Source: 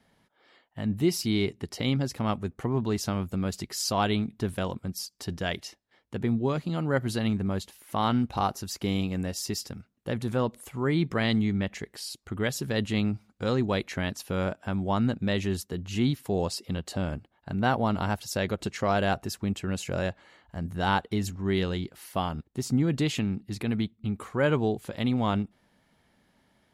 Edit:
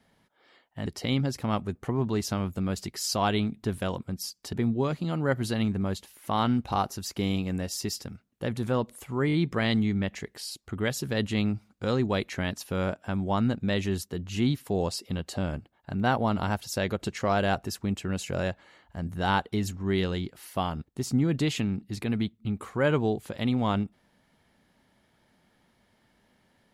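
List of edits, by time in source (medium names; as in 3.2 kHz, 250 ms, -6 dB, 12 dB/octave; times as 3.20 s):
0.86–1.62 s: delete
5.29–6.18 s: delete
10.92 s: stutter 0.02 s, 4 plays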